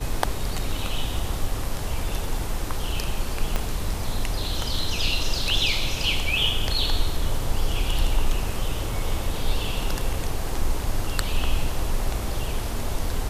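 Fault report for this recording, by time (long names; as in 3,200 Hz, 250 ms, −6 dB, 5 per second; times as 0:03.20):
0:03.56: click −10 dBFS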